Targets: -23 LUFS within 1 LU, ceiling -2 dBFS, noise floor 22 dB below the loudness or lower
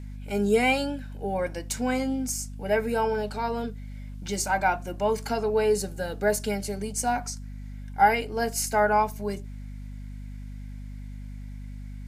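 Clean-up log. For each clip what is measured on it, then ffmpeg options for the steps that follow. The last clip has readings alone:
hum 50 Hz; highest harmonic 250 Hz; hum level -36 dBFS; loudness -26.5 LUFS; peak level -8.0 dBFS; loudness target -23.0 LUFS
-> -af "bandreject=f=50:t=h:w=6,bandreject=f=100:t=h:w=6,bandreject=f=150:t=h:w=6,bandreject=f=200:t=h:w=6,bandreject=f=250:t=h:w=6"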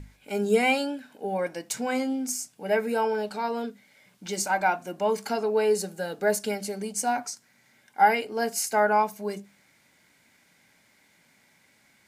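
hum not found; loudness -27.0 LUFS; peak level -8.5 dBFS; loudness target -23.0 LUFS
-> -af "volume=1.58"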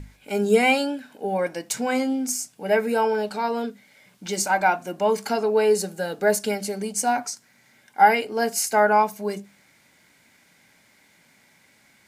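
loudness -23.0 LUFS; peak level -4.5 dBFS; noise floor -59 dBFS

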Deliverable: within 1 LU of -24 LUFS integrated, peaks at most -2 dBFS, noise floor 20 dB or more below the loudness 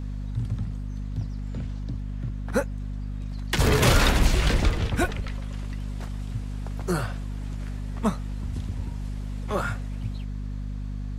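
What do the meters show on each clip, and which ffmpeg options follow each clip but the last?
hum 50 Hz; highest harmonic 250 Hz; hum level -30 dBFS; loudness -28.5 LUFS; peak level -6.5 dBFS; loudness target -24.0 LUFS
-> -af "bandreject=f=50:t=h:w=4,bandreject=f=100:t=h:w=4,bandreject=f=150:t=h:w=4,bandreject=f=200:t=h:w=4,bandreject=f=250:t=h:w=4"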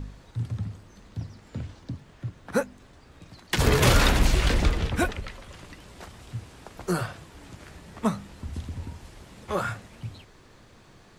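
hum not found; loudness -27.5 LUFS; peak level -6.5 dBFS; loudness target -24.0 LUFS
-> -af "volume=1.5"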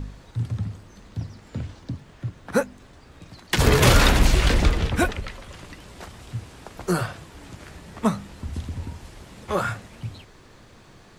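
loudness -24.0 LUFS; peak level -3.0 dBFS; noise floor -50 dBFS

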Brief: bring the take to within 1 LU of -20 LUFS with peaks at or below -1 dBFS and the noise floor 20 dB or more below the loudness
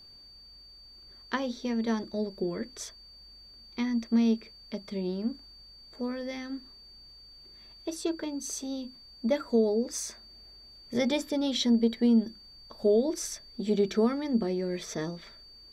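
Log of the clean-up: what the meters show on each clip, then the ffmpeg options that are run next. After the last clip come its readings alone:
steady tone 4.6 kHz; tone level -50 dBFS; loudness -30.0 LUFS; peak level -14.5 dBFS; loudness target -20.0 LUFS
-> -af "bandreject=f=4600:w=30"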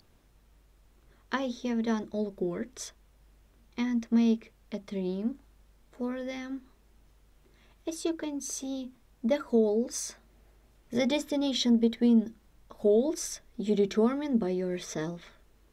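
steady tone not found; loudness -30.0 LUFS; peak level -14.5 dBFS; loudness target -20.0 LUFS
-> -af "volume=3.16"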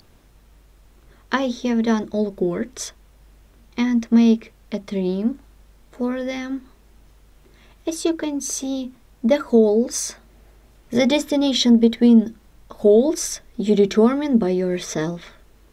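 loudness -20.0 LUFS; peak level -4.5 dBFS; noise floor -53 dBFS

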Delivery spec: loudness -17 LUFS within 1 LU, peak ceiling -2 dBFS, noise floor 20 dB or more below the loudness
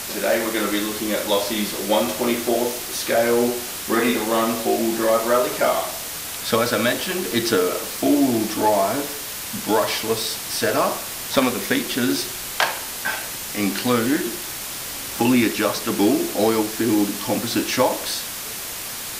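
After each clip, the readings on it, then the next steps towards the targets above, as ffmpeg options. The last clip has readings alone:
noise floor -31 dBFS; noise floor target -42 dBFS; loudness -21.5 LUFS; peak level -4.0 dBFS; loudness target -17.0 LUFS
-> -af "afftdn=nr=11:nf=-31"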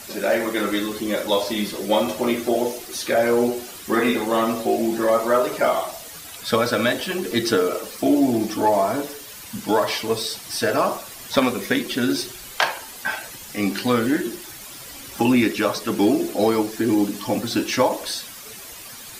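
noise floor -39 dBFS; noise floor target -42 dBFS
-> -af "afftdn=nr=6:nf=-39"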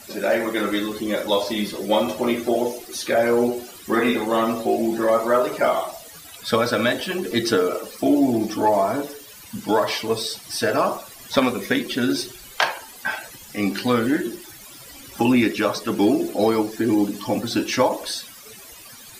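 noise floor -43 dBFS; loudness -22.0 LUFS; peak level -4.0 dBFS; loudness target -17.0 LUFS
-> -af "volume=1.78,alimiter=limit=0.794:level=0:latency=1"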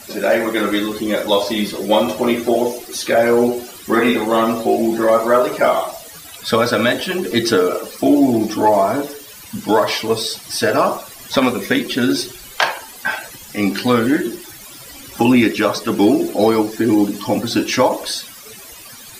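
loudness -17.0 LUFS; peak level -2.0 dBFS; noise floor -38 dBFS

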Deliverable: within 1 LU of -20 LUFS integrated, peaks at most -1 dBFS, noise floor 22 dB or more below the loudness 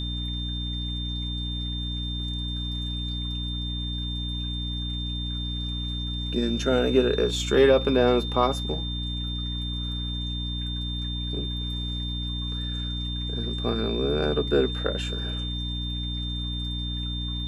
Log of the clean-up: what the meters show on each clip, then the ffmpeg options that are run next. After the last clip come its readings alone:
hum 60 Hz; highest harmonic 300 Hz; hum level -29 dBFS; steady tone 3.6 kHz; tone level -33 dBFS; loudness -27.5 LUFS; peak level -8.0 dBFS; loudness target -20.0 LUFS
-> -af "bandreject=f=60:t=h:w=4,bandreject=f=120:t=h:w=4,bandreject=f=180:t=h:w=4,bandreject=f=240:t=h:w=4,bandreject=f=300:t=h:w=4"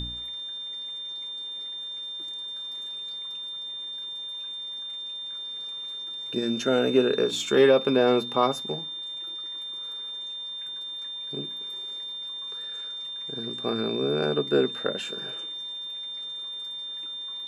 hum not found; steady tone 3.6 kHz; tone level -33 dBFS
-> -af "bandreject=f=3600:w=30"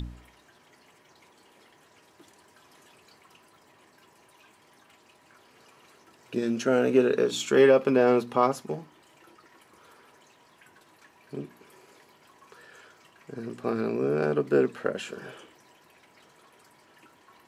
steady tone not found; loudness -25.0 LUFS; peak level -9.5 dBFS; loudness target -20.0 LUFS
-> -af "volume=1.78"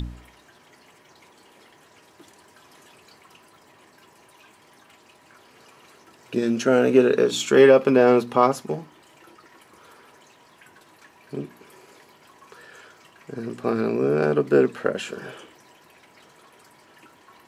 loudness -20.0 LUFS; peak level -4.5 dBFS; noise floor -55 dBFS

